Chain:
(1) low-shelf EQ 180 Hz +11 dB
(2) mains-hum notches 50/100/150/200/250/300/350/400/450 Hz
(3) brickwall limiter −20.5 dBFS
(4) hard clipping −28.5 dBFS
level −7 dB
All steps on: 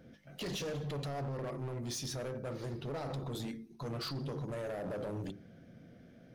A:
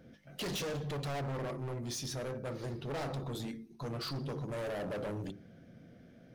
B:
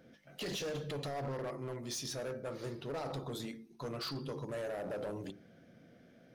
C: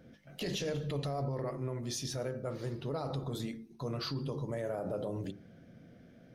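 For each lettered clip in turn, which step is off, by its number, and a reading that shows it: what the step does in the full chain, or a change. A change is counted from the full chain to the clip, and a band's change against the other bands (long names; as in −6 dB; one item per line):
3, average gain reduction 2.0 dB
1, 125 Hz band −5.0 dB
4, distortion level −11 dB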